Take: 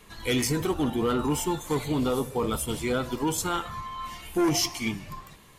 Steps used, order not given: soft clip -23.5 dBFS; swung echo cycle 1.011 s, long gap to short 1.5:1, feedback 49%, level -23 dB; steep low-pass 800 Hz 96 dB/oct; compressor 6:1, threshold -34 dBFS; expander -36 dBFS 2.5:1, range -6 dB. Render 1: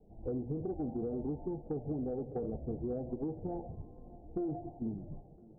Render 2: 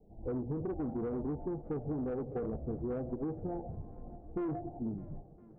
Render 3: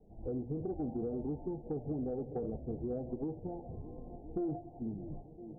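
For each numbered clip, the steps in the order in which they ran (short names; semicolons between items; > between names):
steep low-pass > expander > compressor > soft clip > swung echo; expander > steep low-pass > soft clip > compressor > swung echo; expander > swung echo > compressor > steep low-pass > soft clip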